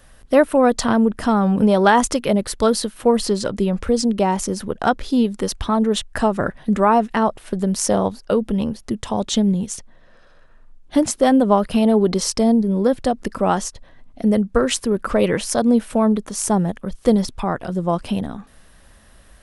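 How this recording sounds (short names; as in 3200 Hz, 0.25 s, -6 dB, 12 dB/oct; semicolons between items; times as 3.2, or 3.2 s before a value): noise floor -49 dBFS; spectral tilt -5.0 dB/oct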